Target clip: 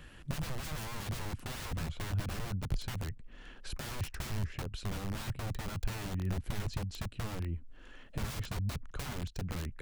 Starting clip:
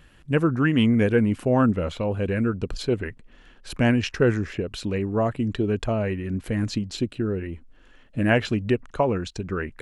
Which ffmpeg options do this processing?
-filter_complex "[0:a]aeval=exprs='(mod(14.1*val(0)+1,2)-1)/14.1':c=same,acrossover=split=160[a][b];[b]acompressor=threshold=-49dB:ratio=3[c];[a][c]amix=inputs=2:normalize=0,volume=1dB"

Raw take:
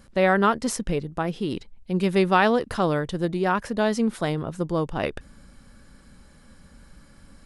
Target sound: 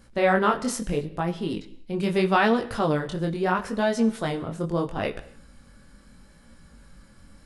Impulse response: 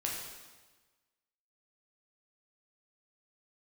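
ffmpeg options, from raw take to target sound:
-filter_complex "[0:a]flanger=delay=17:depth=7.4:speed=0.76,asplit=2[a][b];[1:a]atrim=start_sample=2205,afade=t=out:st=0.42:d=0.01,atrim=end_sample=18963,asetrate=57330,aresample=44100[c];[b][c]afir=irnorm=-1:irlink=0,volume=-10.5dB[d];[a][d]amix=inputs=2:normalize=0"

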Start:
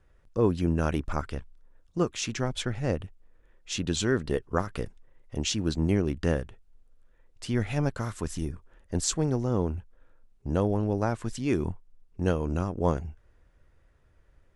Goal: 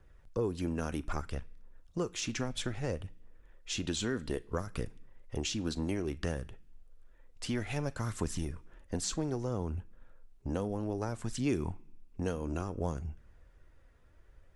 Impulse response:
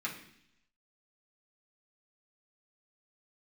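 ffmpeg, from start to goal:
-filter_complex "[0:a]acrossover=split=390|5300[a][b][c];[a]acompressor=threshold=-34dB:ratio=4[d];[b]acompressor=threshold=-38dB:ratio=4[e];[c]acompressor=threshold=-42dB:ratio=4[f];[d][e][f]amix=inputs=3:normalize=0,aphaser=in_gain=1:out_gain=1:delay=4.4:decay=0.29:speed=0.61:type=triangular,asplit=2[g][h];[1:a]atrim=start_sample=2205,highshelf=f=2.3k:g=9.5,adelay=38[i];[h][i]afir=irnorm=-1:irlink=0,volume=-25dB[j];[g][j]amix=inputs=2:normalize=0"

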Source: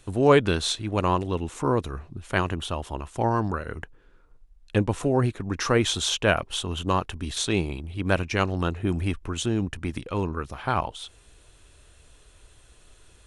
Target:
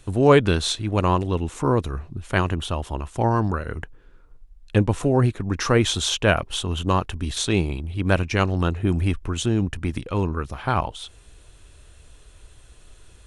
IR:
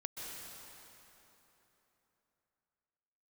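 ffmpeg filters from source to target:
-filter_complex "[0:a]asplit=2[a][b];[1:a]atrim=start_sample=2205,atrim=end_sample=4410,lowshelf=f=240:g=11[c];[b][c]afir=irnorm=-1:irlink=0,volume=-3.5dB[d];[a][d]amix=inputs=2:normalize=0,volume=-1dB"

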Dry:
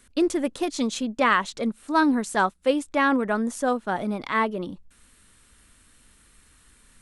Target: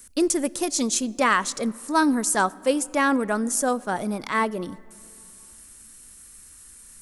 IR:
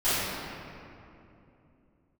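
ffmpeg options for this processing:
-filter_complex "[0:a]asplit=2[a][b];[1:a]atrim=start_sample=2205[c];[b][c]afir=irnorm=-1:irlink=0,volume=-36.5dB[d];[a][d]amix=inputs=2:normalize=0,aexciter=amount=5.2:drive=2.6:freq=5k"

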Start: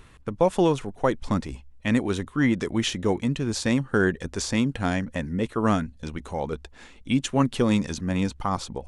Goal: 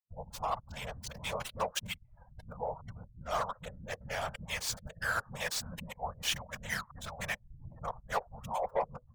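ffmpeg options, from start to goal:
-filter_complex "[0:a]areverse,afftfilt=real='re*(1-between(b*sr/4096,160,530))':imag='im*(1-between(b*sr/4096,160,530))':win_size=4096:overlap=0.75,acrossover=split=470|1200[a][b][c];[a]acompressor=threshold=-42dB:ratio=10[d];[c]aeval=exprs='val(0)*gte(abs(val(0)),0.0335)':c=same[e];[d][b][e]amix=inputs=3:normalize=0,adynamicequalizer=threshold=0.00562:dfrequency=370:dqfactor=0.84:tfrequency=370:tqfactor=0.84:attack=5:release=100:ratio=0.375:range=1.5:mode=cutabove:tftype=bell,asplit=2[f][g];[g]aeval=exprs='0.0596*(abs(mod(val(0)/0.0596+3,4)-2)-1)':c=same,volume=-5.5dB[h];[f][h]amix=inputs=2:normalize=0,afftfilt=real='hypot(re,im)*cos(2*PI*random(0))':imag='hypot(re,im)*sin(2*PI*random(1))':win_size=512:overlap=0.75,afftdn=nr=22:nf=-54,asetrate=42777,aresample=44100"

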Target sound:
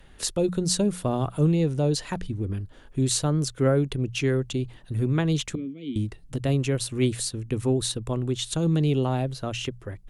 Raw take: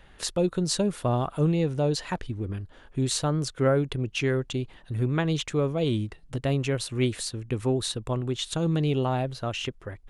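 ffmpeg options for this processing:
-filter_complex "[0:a]asettb=1/sr,asplit=3[a][b][c];[a]atrim=end=5.554[d];[b]atrim=start=5.55:end=5.96,asetpts=PTS-STARTPTS,afade=t=in:d=0.004:c=qsin,afade=t=out:st=0.406:d=0.004:c=qsin,asplit=3[e][f][g];[e]bandpass=f=270:t=q:w=8,volume=0dB[h];[f]bandpass=f=2.29k:t=q:w=8,volume=-6dB[i];[g]bandpass=f=3.01k:t=q:w=8,volume=-9dB[j];[h][i][j]amix=inputs=3:normalize=0[k];[c]atrim=start=5.956[l];[d][k]acrossfade=d=0.004:c1=hsin:c2=qsin[m];[m][l]acrossfade=d=0.004:c1=qsin:c2=hsin,aemphasis=mode=production:type=cd,bandreject=f=60:t=h:w=6,bandreject=f=120:t=h:w=6,bandreject=f=180:t=h:w=6,acrossover=split=450|770[n][o][p];[n]acontrast=52[q];[q][o][p]amix=inputs=3:normalize=0,volume=-2.5dB"

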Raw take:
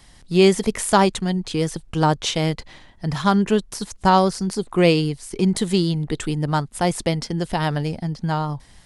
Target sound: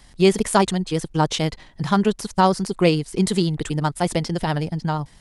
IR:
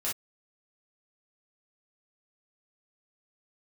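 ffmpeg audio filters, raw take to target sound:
-af "atempo=1.7"

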